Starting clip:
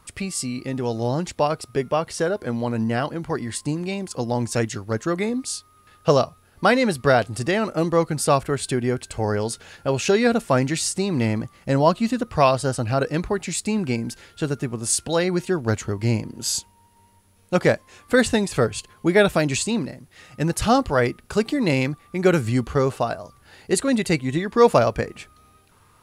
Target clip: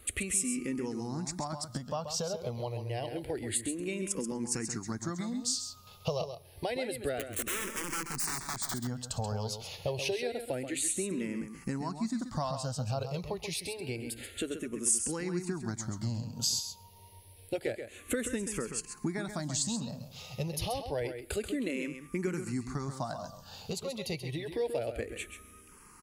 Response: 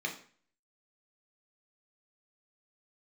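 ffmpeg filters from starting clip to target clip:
-filter_complex "[0:a]equalizer=f=1.4k:w=1.6:g=-4.5,acompressor=threshold=-32dB:ratio=8,asettb=1/sr,asplit=3[a][b][c];[a]atrim=end=7.194[d];[b]atrim=start=7.19:end=8.74,asetpts=PTS-STARTPTS,afade=t=in:d=0.004:c=qsin,afade=t=out:st=1.546:d=0.004:c=qsin,aeval=exprs='(mod(37.6*val(0)+1,2)-1)/37.6':c=same[e];[c]atrim=start=8.736[f];[d][e]acrossfade=d=0.004:c1=hsin:c2=qsin[g];[g][f]acrossfade=d=0.004:c1=qsin:c2=hsin,highshelf=f=4.6k:g=6.5,aecho=1:1:133:0.376,asplit=2[h][i];[1:a]atrim=start_sample=2205,adelay=113[j];[i][j]afir=irnorm=-1:irlink=0,volume=-25dB[k];[h][k]amix=inputs=2:normalize=0,asplit=2[l][m];[m]afreqshift=-0.28[n];[l][n]amix=inputs=2:normalize=1,volume=2.5dB"

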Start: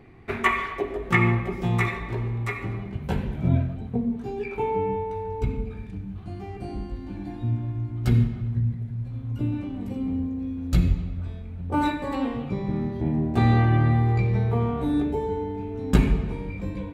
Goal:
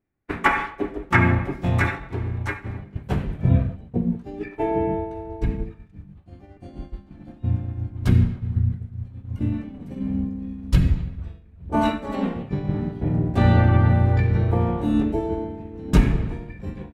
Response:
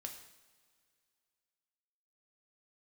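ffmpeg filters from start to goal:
-filter_complex "[0:a]agate=range=-33dB:threshold=-25dB:ratio=3:detection=peak,asplit=2[a][b];[b]asetrate=33038,aresample=44100,atempo=1.33484,volume=0dB[c];[a][c]amix=inputs=2:normalize=0"

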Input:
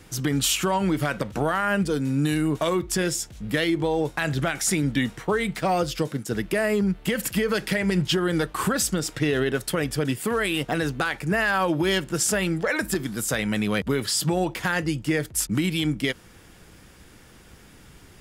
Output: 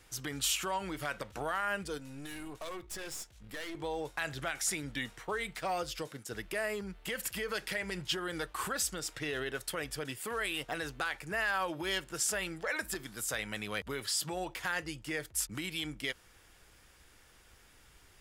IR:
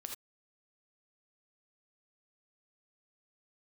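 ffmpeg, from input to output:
-filter_complex "[0:a]equalizer=f=190:t=o:w=2.2:g=-12.5,asettb=1/sr,asplit=3[a][b][c];[a]atrim=end=1.984[d];[b]atrim=start=1.98:end=3.75,asetpts=PTS-STARTPTS,afade=t=in:d=0.004:c=qsin,afade=t=out:st=1.766:d=0.004:c=qsin,aeval=exprs='(tanh(31.6*val(0)+0.65)-tanh(0.65))/31.6':c=same[e];[c]atrim=start=3.746[f];[d][e]acrossfade=d=0.004:c1=hsin:c2=qsin[g];[g][f]acrossfade=d=0.004:c1=qsin:c2=hsin,volume=-8dB"

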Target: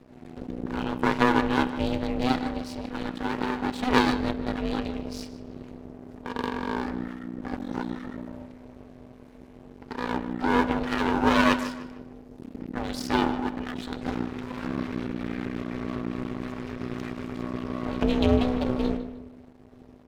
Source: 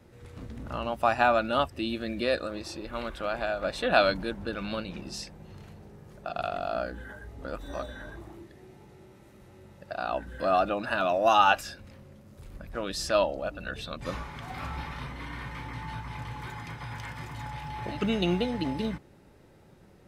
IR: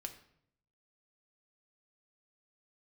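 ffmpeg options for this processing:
-filter_complex "[0:a]asplit=2[a][b];[1:a]atrim=start_sample=2205,lowpass=7.1k,lowshelf=f=430:g=11[c];[b][c]afir=irnorm=-1:irlink=0,volume=1.5dB[d];[a][d]amix=inputs=2:normalize=0,aeval=exprs='max(val(0),0)':c=same,aeval=exprs='val(0)*sin(2*PI*250*n/s)':c=same,asplit=2[e][f];[f]adelay=152,lowpass=f=4k:p=1,volume=-12.5dB,asplit=2[g][h];[h]adelay=152,lowpass=f=4k:p=1,volume=0.37,asplit=2[i][j];[j]adelay=152,lowpass=f=4k:p=1,volume=0.37,asplit=2[k][l];[l]adelay=152,lowpass=f=4k:p=1,volume=0.37[m];[e][g][i][k][m]amix=inputs=5:normalize=0"

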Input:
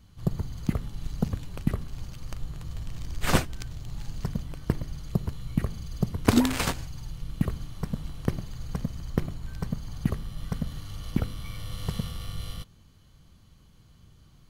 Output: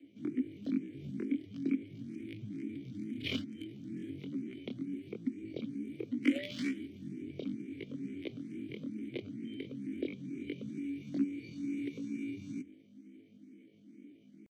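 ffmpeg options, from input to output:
-filter_complex "[0:a]aeval=exprs='val(0)+0.00224*(sin(2*PI*60*n/s)+sin(2*PI*2*60*n/s)/2+sin(2*PI*3*60*n/s)/3+sin(2*PI*4*60*n/s)/4+sin(2*PI*5*60*n/s)/5)':c=same,afreqshift=45,asetrate=85689,aresample=44100,atempo=0.514651,asplit=3[a][b][c];[a]bandpass=f=270:t=q:w=8,volume=0dB[d];[b]bandpass=f=2.29k:t=q:w=8,volume=-6dB[e];[c]bandpass=f=3.01k:t=q:w=8,volume=-9dB[f];[d][e][f]amix=inputs=3:normalize=0,asplit=2[g][h];[h]acompressor=threshold=-46dB:ratio=6,volume=1dB[i];[g][i]amix=inputs=2:normalize=0,asplit=2[j][k];[k]afreqshift=2.2[l];[j][l]amix=inputs=2:normalize=1,volume=3dB"

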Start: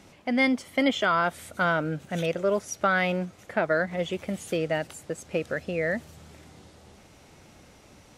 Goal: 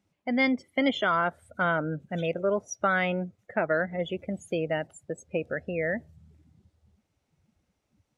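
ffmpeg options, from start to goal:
-af "afftdn=nr=24:nf=-37,volume=-1.5dB"

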